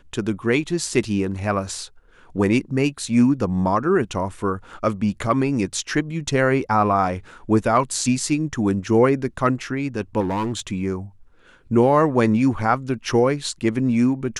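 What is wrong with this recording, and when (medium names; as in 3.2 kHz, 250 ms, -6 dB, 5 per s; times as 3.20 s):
10.20–10.60 s: clipped -20 dBFS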